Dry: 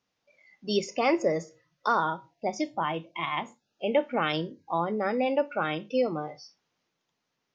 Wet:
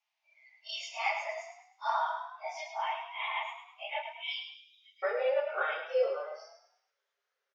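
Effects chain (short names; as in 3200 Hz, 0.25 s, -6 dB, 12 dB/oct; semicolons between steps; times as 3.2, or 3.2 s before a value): phase scrambler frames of 0.1 s; rippled Chebyshev high-pass 630 Hz, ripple 9 dB, from 4.02 s 2200 Hz, from 5.02 s 390 Hz; frequency-shifting echo 0.105 s, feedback 41%, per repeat +33 Hz, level -7.5 dB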